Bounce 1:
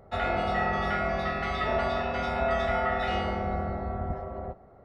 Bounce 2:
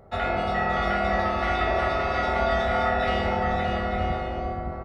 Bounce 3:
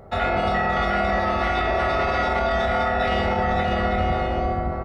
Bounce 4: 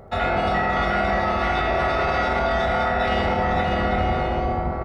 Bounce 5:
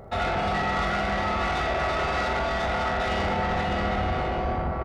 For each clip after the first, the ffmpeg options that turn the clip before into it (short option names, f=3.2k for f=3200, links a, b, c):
-af "aecho=1:1:570|912|1117|1240|1314:0.631|0.398|0.251|0.158|0.1,volume=2dB"
-af "alimiter=limit=-20dB:level=0:latency=1:release=41,volume=6.5dB"
-filter_complex "[0:a]areverse,acompressor=mode=upward:threshold=-25dB:ratio=2.5,areverse,asplit=6[a][b][c][d][e][f];[b]adelay=81,afreqshift=87,volume=-12dB[g];[c]adelay=162,afreqshift=174,volume=-17.8dB[h];[d]adelay=243,afreqshift=261,volume=-23.7dB[i];[e]adelay=324,afreqshift=348,volume=-29.5dB[j];[f]adelay=405,afreqshift=435,volume=-35.4dB[k];[a][g][h][i][j][k]amix=inputs=6:normalize=0"
-filter_complex "[0:a]asoftclip=type=tanh:threshold=-21.5dB,asplit=2[a][b];[b]adelay=44,volume=-10.5dB[c];[a][c]amix=inputs=2:normalize=0"